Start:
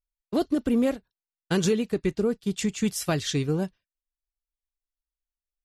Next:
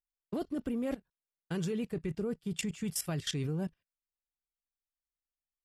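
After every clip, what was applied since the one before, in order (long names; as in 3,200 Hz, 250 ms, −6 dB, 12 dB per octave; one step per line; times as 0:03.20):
thirty-one-band graphic EQ 160 Hz +7 dB, 4,000 Hz −7 dB, 6,300 Hz −7 dB
output level in coarse steps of 17 dB
level +1 dB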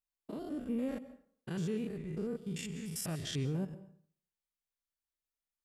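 spectrum averaged block by block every 100 ms
dense smooth reverb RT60 0.56 s, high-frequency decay 0.65×, pre-delay 115 ms, DRR 15 dB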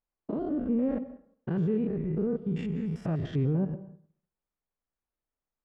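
Bessel low-pass filter 940 Hz, order 2
in parallel at +3 dB: output level in coarse steps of 16 dB
on the sum: level +6 dB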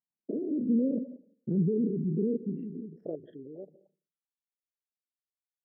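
spectral envelope exaggerated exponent 3
high-pass filter sweep 190 Hz → 2,800 Hz, 0:02.16–0:05.10
level −4 dB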